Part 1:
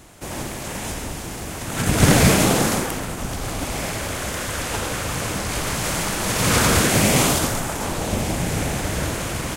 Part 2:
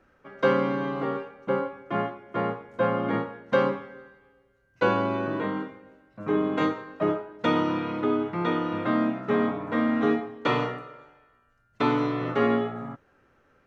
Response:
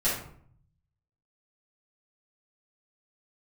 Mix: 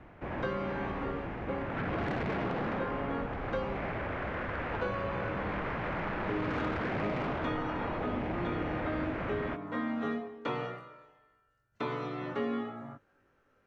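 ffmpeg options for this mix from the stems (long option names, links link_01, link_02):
-filter_complex "[0:a]lowpass=frequency=2200:width=0.5412,lowpass=frequency=2200:width=1.3066,asoftclip=type=tanh:threshold=-18.5dB,volume=-5dB[link_01];[1:a]flanger=delay=19.5:depth=3.1:speed=0.22,volume=-4dB[link_02];[link_01][link_02]amix=inputs=2:normalize=0,acrossover=split=240|2800[link_03][link_04][link_05];[link_03]acompressor=threshold=-39dB:ratio=4[link_06];[link_04]acompressor=threshold=-32dB:ratio=4[link_07];[link_05]acompressor=threshold=-54dB:ratio=4[link_08];[link_06][link_07][link_08]amix=inputs=3:normalize=0"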